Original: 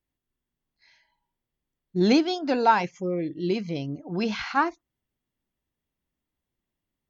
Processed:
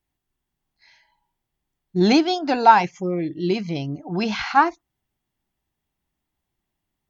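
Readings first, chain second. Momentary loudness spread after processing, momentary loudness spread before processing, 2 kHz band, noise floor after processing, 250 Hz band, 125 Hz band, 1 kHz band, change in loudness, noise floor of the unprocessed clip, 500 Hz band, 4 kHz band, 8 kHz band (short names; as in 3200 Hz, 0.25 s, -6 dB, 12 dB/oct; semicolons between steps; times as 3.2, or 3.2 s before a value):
13 LU, 11 LU, +5.0 dB, -82 dBFS, +3.5 dB, +4.5 dB, +7.5 dB, +5.0 dB, under -85 dBFS, +3.0 dB, +5.0 dB, n/a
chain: thirty-one-band EQ 250 Hz -4 dB, 500 Hz -7 dB, 800 Hz +6 dB; gain +5 dB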